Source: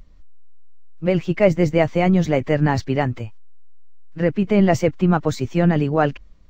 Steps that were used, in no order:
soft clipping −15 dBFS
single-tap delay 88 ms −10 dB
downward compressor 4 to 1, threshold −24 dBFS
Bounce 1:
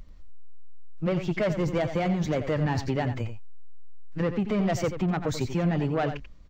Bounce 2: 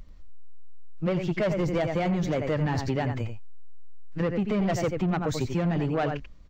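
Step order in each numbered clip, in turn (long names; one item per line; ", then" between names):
soft clipping, then downward compressor, then single-tap delay
single-tap delay, then soft clipping, then downward compressor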